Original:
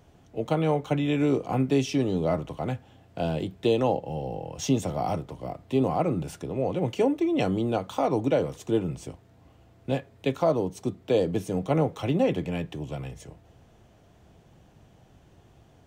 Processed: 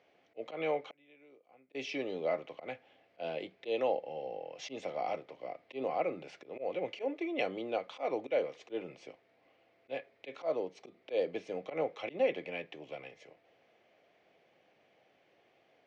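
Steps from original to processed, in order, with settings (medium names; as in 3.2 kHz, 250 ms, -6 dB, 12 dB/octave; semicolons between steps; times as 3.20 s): slow attack 102 ms; 0.88–1.75 s: inverted gate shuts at -31 dBFS, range -26 dB; cabinet simulation 490–4600 Hz, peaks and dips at 530 Hz +4 dB, 960 Hz -7 dB, 1.4 kHz -4 dB, 2.2 kHz +9 dB, 3.6 kHz -3 dB; trim -5 dB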